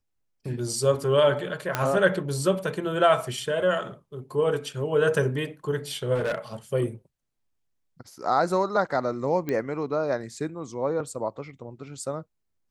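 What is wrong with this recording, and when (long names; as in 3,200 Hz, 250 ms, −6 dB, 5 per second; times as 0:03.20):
0:01.75: click −9 dBFS
0:06.14–0:06.38: clipping −23 dBFS
0:09.49: click −16 dBFS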